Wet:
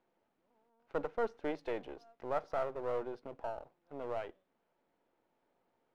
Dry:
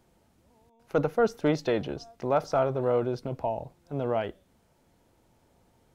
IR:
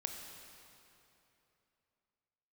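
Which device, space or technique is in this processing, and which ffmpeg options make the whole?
crystal radio: -af "highpass=310,lowpass=2.6k,aeval=exprs='if(lt(val(0),0),0.447*val(0),val(0))':c=same,volume=-7.5dB"

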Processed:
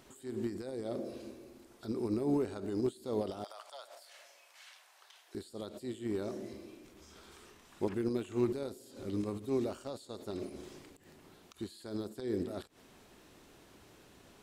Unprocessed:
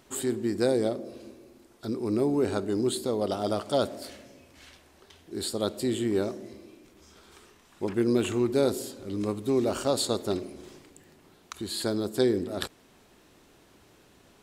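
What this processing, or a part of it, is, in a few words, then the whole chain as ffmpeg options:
de-esser from a sidechain: -filter_complex "[0:a]asplit=2[a][b];[b]highpass=7k,apad=whole_len=636105[c];[a][c]sidechaincompress=threshold=-57dB:ratio=6:attack=0.62:release=77,asettb=1/sr,asplit=3[d][e][f];[d]atrim=end=3.444[g];[e]atrim=start=3.44:end=5.35,asetpts=PTS-STARTPTS,afade=t=in:d=0.004:c=qsin,afade=t=out:st=1.906:d=0.004:c=qsin,highpass=f=740:w=0.5412,highpass=f=740:w=1.3066[h];[f]atrim=start=5.346[i];[g][h]acrossfade=d=0.004:c1=hsin:c2=qsin[j];[j][i]acrossfade=d=0.004:c1=qsin:c2=hsin,volume=-1dB"

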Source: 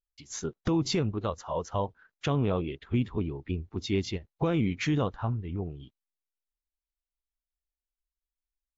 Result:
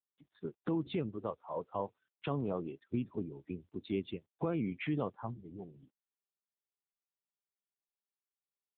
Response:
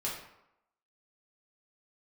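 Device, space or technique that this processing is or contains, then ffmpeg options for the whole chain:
mobile call with aggressive noise cancelling: -af "highpass=160,afftdn=nr=32:nf=-41,volume=-5.5dB" -ar 8000 -c:a libopencore_amrnb -b:a 7950

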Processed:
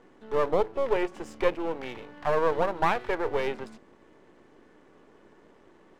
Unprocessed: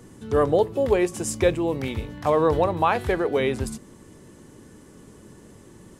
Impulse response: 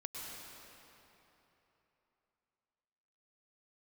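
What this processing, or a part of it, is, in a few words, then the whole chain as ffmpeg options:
crystal radio: -af "highpass=370,lowpass=2.5k,aeval=exprs='if(lt(val(0),0),0.251*val(0),val(0))':c=same"

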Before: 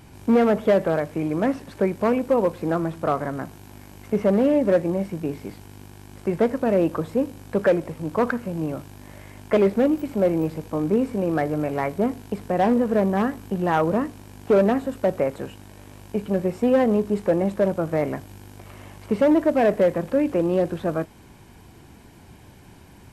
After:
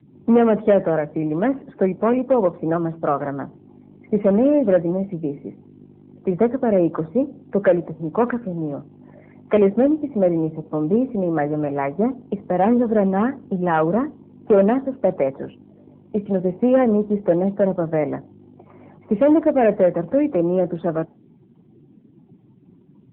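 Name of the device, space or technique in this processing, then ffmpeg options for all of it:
mobile call with aggressive noise cancelling: -af "highpass=f=130:w=0.5412,highpass=f=130:w=1.3066,afftdn=nr=23:nf=-42,volume=3dB" -ar 8000 -c:a libopencore_amrnb -b:a 7950

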